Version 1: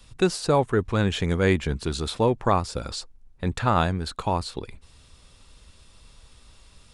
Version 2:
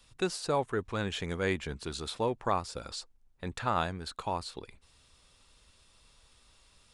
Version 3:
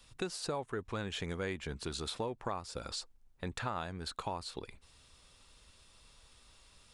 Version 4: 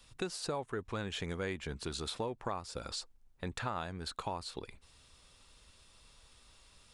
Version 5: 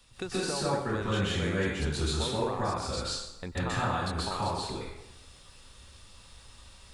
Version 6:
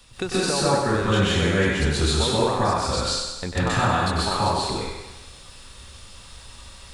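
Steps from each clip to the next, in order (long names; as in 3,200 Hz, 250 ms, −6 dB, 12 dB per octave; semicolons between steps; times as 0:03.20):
low-shelf EQ 320 Hz −7.5 dB; level −6.5 dB
downward compressor 4 to 1, threshold −36 dBFS, peak gain reduction 11.5 dB; level +1 dB
no processing that can be heard
dense smooth reverb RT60 0.92 s, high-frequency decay 0.75×, pre-delay 115 ms, DRR −7.5 dB
feedback echo with a high-pass in the loop 96 ms, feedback 58%, high-pass 420 Hz, level −7 dB; level +8.5 dB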